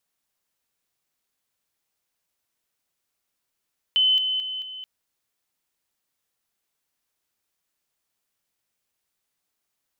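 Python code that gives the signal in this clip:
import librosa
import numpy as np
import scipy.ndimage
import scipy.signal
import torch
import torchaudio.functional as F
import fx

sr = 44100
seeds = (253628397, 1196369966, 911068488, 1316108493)

y = fx.level_ladder(sr, hz=3040.0, from_db=-16.0, step_db=-6.0, steps=4, dwell_s=0.22, gap_s=0.0)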